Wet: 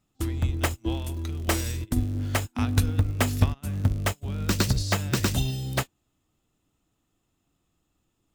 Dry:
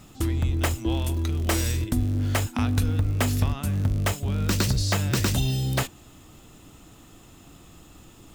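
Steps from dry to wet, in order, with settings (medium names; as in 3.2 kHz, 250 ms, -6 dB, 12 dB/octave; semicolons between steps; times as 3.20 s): upward expansion 2.5:1, over -38 dBFS; trim +5 dB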